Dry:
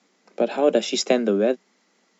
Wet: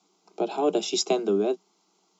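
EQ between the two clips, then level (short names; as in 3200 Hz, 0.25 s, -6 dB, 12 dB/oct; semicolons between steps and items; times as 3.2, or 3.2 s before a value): fixed phaser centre 360 Hz, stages 8; 0.0 dB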